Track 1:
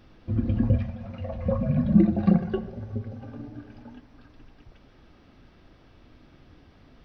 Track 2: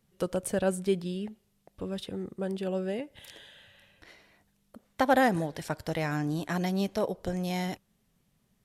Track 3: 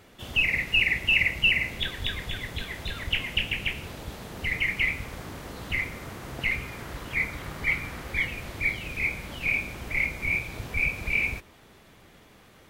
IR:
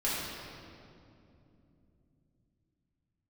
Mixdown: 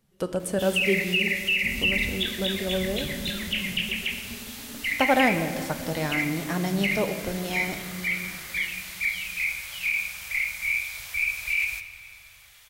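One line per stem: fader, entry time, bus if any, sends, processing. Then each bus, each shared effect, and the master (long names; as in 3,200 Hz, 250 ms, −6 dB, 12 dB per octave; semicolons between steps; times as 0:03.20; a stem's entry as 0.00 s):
−6.5 dB, 1.35 s, no send, Butterworth low-pass 1,400 Hz 48 dB per octave; comb filter 4.6 ms, depth 83%; slew-rate limiting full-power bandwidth 7.5 Hz
+0.5 dB, 0.00 s, send −14.5 dB, no processing
+1.5 dB, 0.40 s, send −15.5 dB, spectral tilt +2.5 dB per octave; brickwall limiter −16.5 dBFS, peak gain reduction 10 dB; guitar amp tone stack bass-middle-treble 10-0-10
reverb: on, RT60 2.8 s, pre-delay 3 ms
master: no processing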